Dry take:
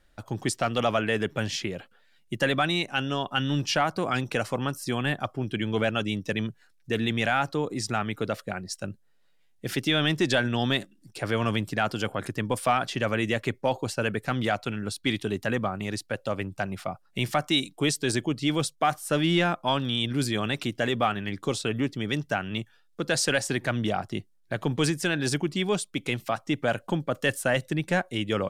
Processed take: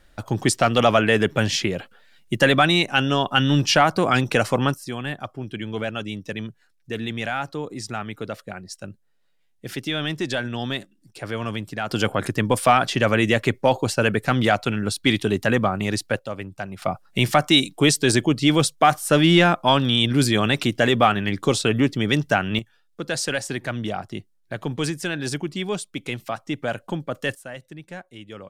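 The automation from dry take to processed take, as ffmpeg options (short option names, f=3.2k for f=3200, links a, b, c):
-af "asetnsamples=n=441:p=0,asendcmd='4.74 volume volume -2dB;11.91 volume volume 7.5dB;16.19 volume volume -1.5dB;16.82 volume volume 8dB;22.59 volume volume -0.5dB;27.35 volume volume -12dB',volume=8dB"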